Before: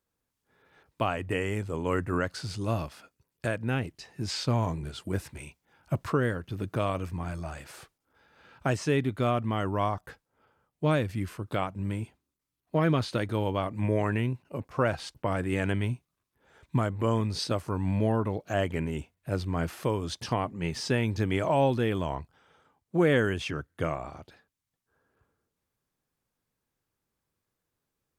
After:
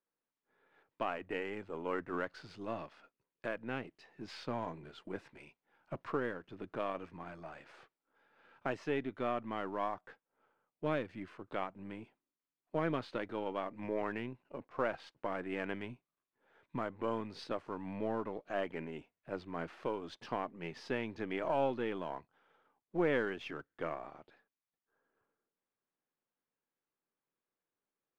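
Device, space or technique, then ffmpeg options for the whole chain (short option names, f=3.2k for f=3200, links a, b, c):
crystal radio: -af "highpass=250,lowpass=2.8k,aeval=exprs='if(lt(val(0),0),0.708*val(0),val(0))':c=same,volume=-6dB"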